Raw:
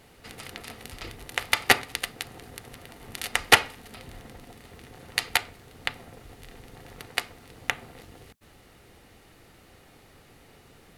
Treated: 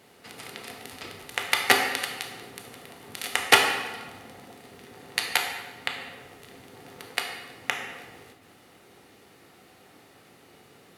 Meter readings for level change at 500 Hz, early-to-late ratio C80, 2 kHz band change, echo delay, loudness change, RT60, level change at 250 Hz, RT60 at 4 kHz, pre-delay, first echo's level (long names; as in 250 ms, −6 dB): +1.5 dB, 6.5 dB, +0.5 dB, no echo audible, +0.5 dB, 1.3 s, +1.0 dB, 0.95 s, 13 ms, no echo audible